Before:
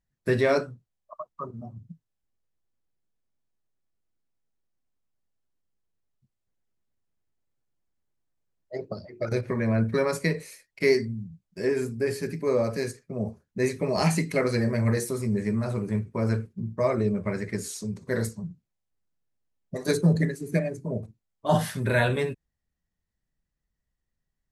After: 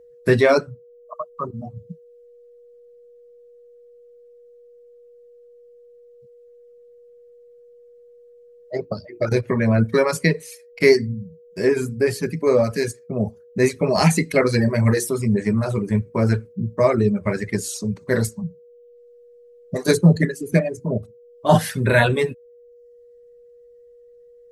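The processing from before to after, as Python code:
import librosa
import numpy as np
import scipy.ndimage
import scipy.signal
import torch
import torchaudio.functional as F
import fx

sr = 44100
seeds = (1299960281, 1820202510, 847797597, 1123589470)

y = fx.dereverb_blind(x, sr, rt60_s=0.69)
y = y + 10.0 ** (-54.0 / 20.0) * np.sin(2.0 * np.pi * 480.0 * np.arange(len(y)) / sr)
y = y * librosa.db_to_amplitude(8.0)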